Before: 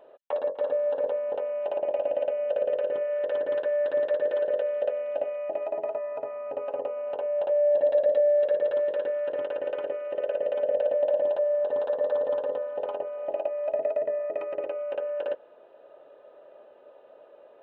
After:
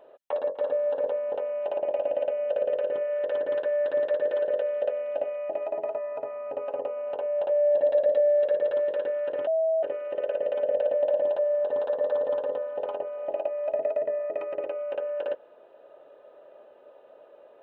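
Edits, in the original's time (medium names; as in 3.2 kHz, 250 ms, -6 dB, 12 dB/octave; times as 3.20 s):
9.47–9.83 s: bleep 646 Hz -21 dBFS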